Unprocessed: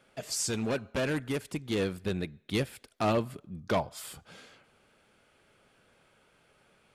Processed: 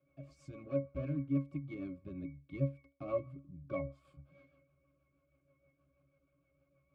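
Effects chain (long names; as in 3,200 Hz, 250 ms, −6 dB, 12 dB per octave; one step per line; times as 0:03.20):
resonances in every octave C#, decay 0.25 s
rotating-speaker cabinet horn 6.3 Hz
level +6.5 dB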